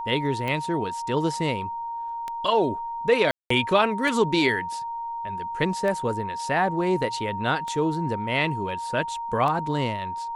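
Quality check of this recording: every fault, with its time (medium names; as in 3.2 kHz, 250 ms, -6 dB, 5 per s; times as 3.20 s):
tick 33 1/3 rpm -17 dBFS
whine 930 Hz -29 dBFS
3.31–3.50 s: dropout 194 ms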